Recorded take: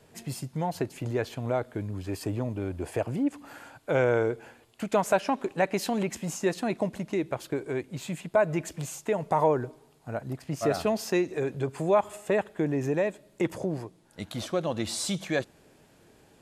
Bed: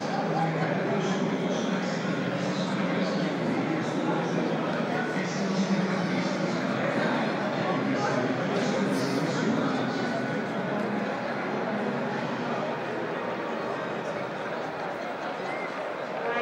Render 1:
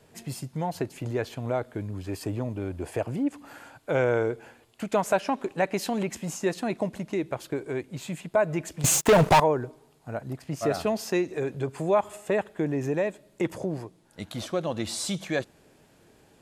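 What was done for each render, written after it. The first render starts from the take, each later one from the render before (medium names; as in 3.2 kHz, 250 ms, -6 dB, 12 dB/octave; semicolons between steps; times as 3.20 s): 8.84–9.40 s: waveshaping leveller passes 5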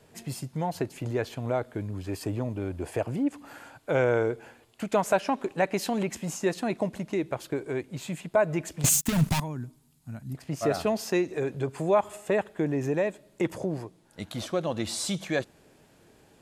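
8.89–10.35 s: FFT filter 240 Hz 0 dB, 450 Hz -22 dB, 890 Hz -15 dB, 13 kHz +4 dB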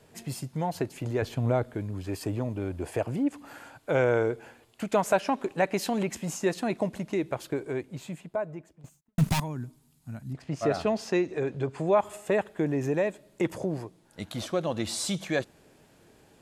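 1.22–1.75 s: bass shelf 240 Hz +9 dB; 7.43–9.18 s: studio fade out; 10.31–12.00 s: distance through air 64 m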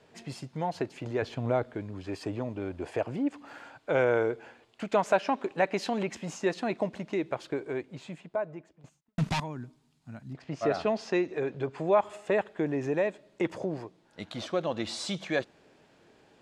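low-pass 5 kHz 12 dB/octave; bass shelf 150 Hz -10.5 dB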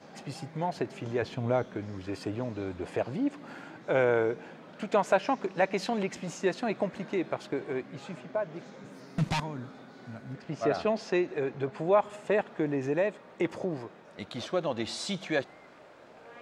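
add bed -21.5 dB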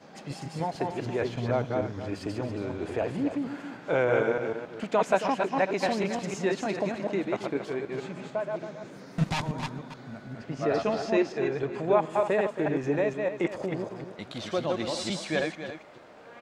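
chunks repeated in reverse 151 ms, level -2.5 dB; on a send: delay 275 ms -10.5 dB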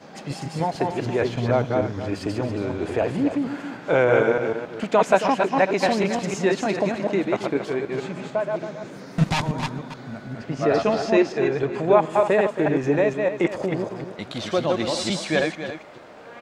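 trim +6.5 dB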